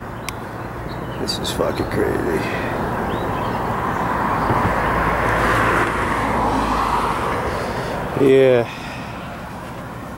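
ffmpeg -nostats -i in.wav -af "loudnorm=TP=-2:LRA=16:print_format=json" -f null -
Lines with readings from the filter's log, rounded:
"input_i" : "-19.6",
"input_tp" : "-3.5",
"input_lra" : "3.4",
"input_thresh" : "-30.1",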